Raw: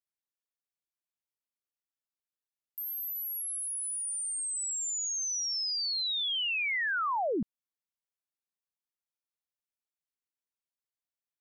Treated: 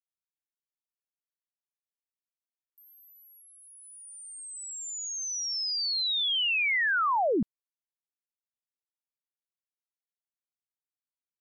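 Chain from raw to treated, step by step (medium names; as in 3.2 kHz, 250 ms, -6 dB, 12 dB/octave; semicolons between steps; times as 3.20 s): gate -33 dBFS, range -24 dB; trim +4.5 dB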